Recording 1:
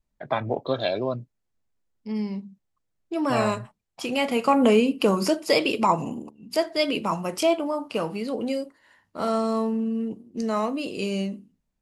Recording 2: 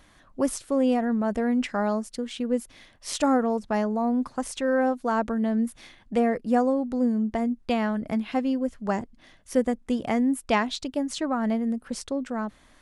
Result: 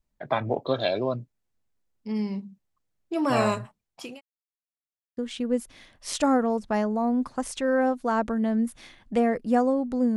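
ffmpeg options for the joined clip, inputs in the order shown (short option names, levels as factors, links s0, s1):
-filter_complex "[0:a]apad=whole_dur=10.16,atrim=end=10.16,asplit=2[s0][s1];[s0]atrim=end=4.21,asetpts=PTS-STARTPTS,afade=t=out:st=3.6:d=0.61:c=qsin[s2];[s1]atrim=start=4.21:end=5.17,asetpts=PTS-STARTPTS,volume=0[s3];[1:a]atrim=start=2.17:end=7.16,asetpts=PTS-STARTPTS,afade=t=in:d=0.004:c=hsin[s4];[s2][s3][s4]concat=n=3:v=0:a=1"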